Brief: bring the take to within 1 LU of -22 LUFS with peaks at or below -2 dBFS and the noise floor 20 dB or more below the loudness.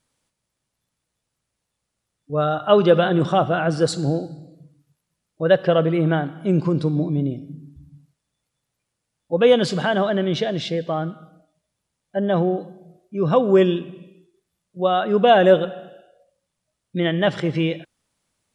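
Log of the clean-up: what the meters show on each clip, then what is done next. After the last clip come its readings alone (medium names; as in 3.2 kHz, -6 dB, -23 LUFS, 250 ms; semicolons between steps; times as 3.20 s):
loudness -20.0 LUFS; peak level -2.0 dBFS; loudness target -22.0 LUFS
-> trim -2 dB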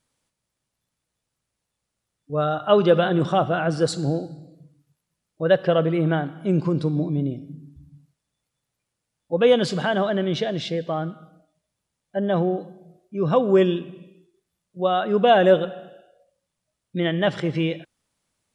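loudness -22.0 LUFS; peak level -4.0 dBFS; noise floor -82 dBFS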